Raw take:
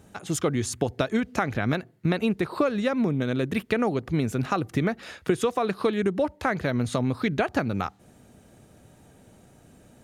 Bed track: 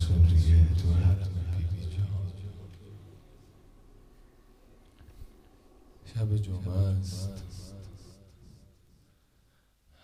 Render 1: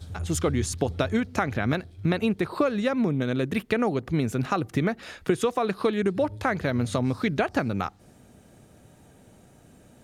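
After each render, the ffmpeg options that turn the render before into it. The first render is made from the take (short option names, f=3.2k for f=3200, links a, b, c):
-filter_complex "[1:a]volume=-13dB[a];[0:a][a]amix=inputs=2:normalize=0"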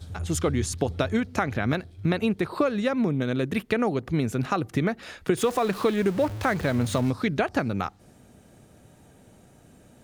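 -filter_complex "[0:a]asettb=1/sr,asplit=3[a][b][c];[a]atrim=end=5.374[d];[b]atrim=start=5.37:end=7.11,asetpts=PTS-STARTPTS,afade=t=in:d=0.004:c=qsin,afade=t=out:st=1.736:d=0.004:c=qsin,aeval=exprs='val(0)+0.5*0.0211*sgn(val(0))':c=same[e];[c]atrim=start=7.106[f];[d][e]acrossfade=d=0.004:c1=hsin:c2=qsin[g];[g][f]acrossfade=d=0.004:c1=qsin:c2=hsin"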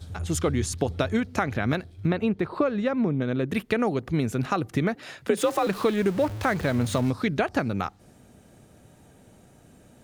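-filter_complex "[0:a]asettb=1/sr,asplit=3[a][b][c];[a]atrim=end=2.074[d];[b]atrim=start=2.07:end=3.49,asetpts=PTS-STARTPTS,afade=t=in:d=0.004:c=qsin,afade=t=out:st=1.416:d=0.004:c=qsin,aemphasis=mode=reproduction:type=75kf[e];[c]atrim=start=3.486[f];[d][e]acrossfade=d=0.004:c1=hsin:c2=qsin[g];[g][f]acrossfade=d=0.004:c1=qsin:c2=hsin,asettb=1/sr,asplit=3[h][i][j];[h]atrim=end=4.954[k];[i]atrim=start=4.95:end=5.67,asetpts=PTS-STARTPTS,afade=t=in:d=0.004:c=qsin,afade=t=out:st=0.716:d=0.004:c=qsin,afreqshift=58[l];[j]atrim=start=5.666[m];[k][l]acrossfade=d=0.004:c1=hsin:c2=qsin[n];[n][m]acrossfade=d=0.004:c1=qsin:c2=hsin"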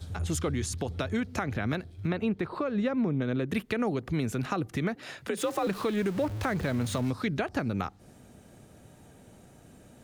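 -filter_complex "[0:a]acrossover=split=490[a][b];[b]acompressor=threshold=-39dB:ratio=1.5[c];[a][c]amix=inputs=2:normalize=0,acrossover=split=830[d][e];[d]alimiter=limit=-21.5dB:level=0:latency=1:release=169[f];[f][e]amix=inputs=2:normalize=0"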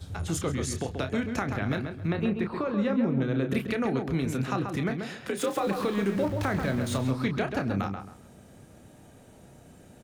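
-filter_complex "[0:a]asplit=2[a][b];[b]adelay=30,volume=-8dB[c];[a][c]amix=inputs=2:normalize=0,asplit=2[d][e];[e]adelay=134,lowpass=f=2.3k:p=1,volume=-5.5dB,asplit=2[f][g];[g]adelay=134,lowpass=f=2.3k:p=1,volume=0.28,asplit=2[h][i];[i]adelay=134,lowpass=f=2.3k:p=1,volume=0.28,asplit=2[j][k];[k]adelay=134,lowpass=f=2.3k:p=1,volume=0.28[l];[f][h][j][l]amix=inputs=4:normalize=0[m];[d][m]amix=inputs=2:normalize=0"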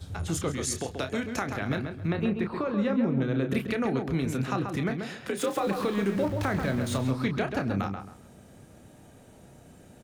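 -filter_complex "[0:a]asettb=1/sr,asplit=3[a][b][c];[a]atrim=end=0.514[d];[b]atrim=start=0.51:end=1.69,asetpts=PTS-STARTPTS,afade=t=in:d=0.004:c=qsin,afade=t=out:st=1.176:d=0.004:c=qsin,bass=f=250:g=-5,treble=f=4k:g=5[e];[c]atrim=start=1.686[f];[d][e]acrossfade=d=0.004:c1=hsin:c2=qsin[g];[g][f]acrossfade=d=0.004:c1=qsin:c2=hsin"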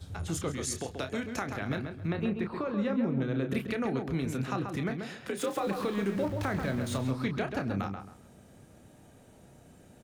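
-af "volume=-3.5dB"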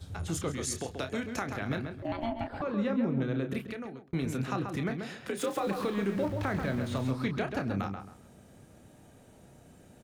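-filter_complex "[0:a]asettb=1/sr,asplit=3[a][b][c];[a]atrim=end=2.024[d];[b]atrim=start=2.02:end=2.62,asetpts=PTS-STARTPTS,afade=t=in:d=0.004:c=qsin,afade=t=out:st=0.596:d=0.004:c=qsin,aeval=exprs='val(0)*sin(2*PI*460*n/s)':c=same[e];[c]atrim=start=2.616[f];[d][e]acrossfade=d=0.004:c1=hsin:c2=qsin[g];[g][f]acrossfade=d=0.004:c1=qsin:c2=hsin,asettb=1/sr,asplit=3[h][i][j];[h]atrim=end=5.904[k];[i]atrim=start=5.9:end=6.97,asetpts=PTS-STARTPTS,afade=t=in:d=0.004:c=qsin,afade=t=out:st=1.066:d=0.004:c=qsin,acrossover=split=4100[l][m];[m]acompressor=threshold=-52dB:ratio=4:attack=1:release=60[n];[l][n]amix=inputs=2:normalize=0[o];[j]atrim=start=6.966[p];[k][o]acrossfade=d=0.004:c1=hsin:c2=qsin[q];[q][p]acrossfade=d=0.004:c1=qsin:c2=hsin,asplit=2[r][s];[r]atrim=end=4.13,asetpts=PTS-STARTPTS,afade=t=out:st=3.3:d=0.83[t];[s]atrim=start=4.13,asetpts=PTS-STARTPTS,afade=t=in:d=0.004:c=hsin[u];[t][u]concat=n=2:v=0:a=1"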